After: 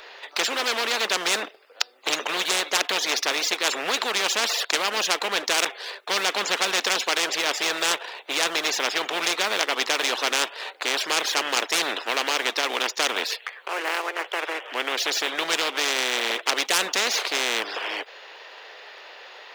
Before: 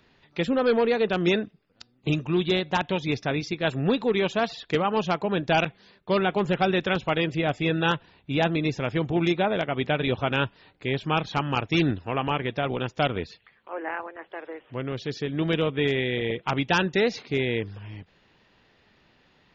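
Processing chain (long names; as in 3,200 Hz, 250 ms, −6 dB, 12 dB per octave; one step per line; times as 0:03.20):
leveller curve on the samples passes 1
Butterworth high-pass 450 Hz 36 dB per octave
every bin compressed towards the loudest bin 4 to 1
level +7 dB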